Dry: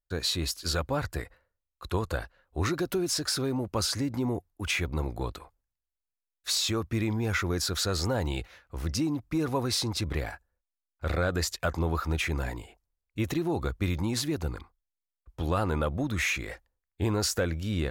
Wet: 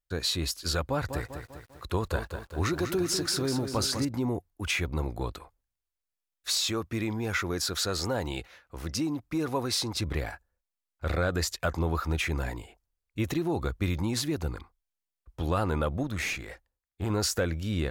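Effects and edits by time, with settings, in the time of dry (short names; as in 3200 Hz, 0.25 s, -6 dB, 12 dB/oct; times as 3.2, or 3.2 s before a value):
0.84–4.05 lo-fi delay 0.198 s, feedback 55%, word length 9-bit, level -8 dB
6.57–9.95 low shelf 130 Hz -8 dB
16.03–17.1 tube stage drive 22 dB, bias 0.65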